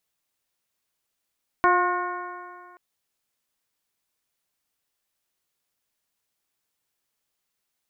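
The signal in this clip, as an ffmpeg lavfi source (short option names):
-f lavfi -i "aevalsrc='0.0794*pow(10,-3*t/2.04)*sin(2*PI*354.46*t)+0.0841*pow(10,-3*t/2.04)*sin(2*PI*711.67*t)+0.141*pow(10,-3*t/2.04)*sin(2*PI*1074.35*t)+0.0794*pow(10,-3*t/2.04)*sin(2*PI*1445.15*t)+0.0376*pow(10,-3*t/2.04)*sin(2*PI*1826.62*t)+0.02*pow(10,-3*t/2.04)*sin(2*PI*2221.18*t)':d=1.13:s=44100"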